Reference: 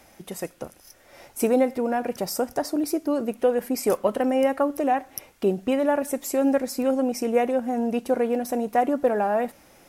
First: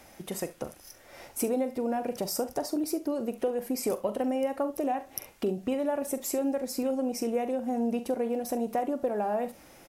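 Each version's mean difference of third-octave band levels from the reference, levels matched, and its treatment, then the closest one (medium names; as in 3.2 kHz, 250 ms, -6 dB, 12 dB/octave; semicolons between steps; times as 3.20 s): 3.0 dB: dynamic bell 1.6 kHz, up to -6 dB, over -41 dBFS, Q 1.2; compression 2.5:1, threshold -29 dBFS, peak gain reduction 9 dB; early reflections 43 ms -13 dB, 68 ms -18 dB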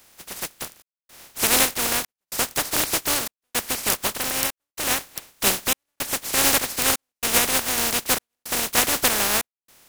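15.0 dB: spectral contrast reduction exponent 0.17; level rider gain up to 3 dB; trance gate "xxxxxx..x" 110 bpm -60 dB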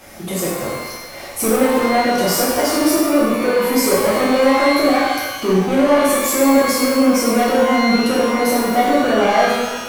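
11.0 dB: in parallel at +2.5 dB: peak limiter -19.5 dBFS, peak gain reduction 11 dB; on the sum: saturation -18.5 dBFS, distortion -10 dB; pitch-shifted reverb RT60 1.1 s, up +12 st, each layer -8 dB, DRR -7.5 dB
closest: first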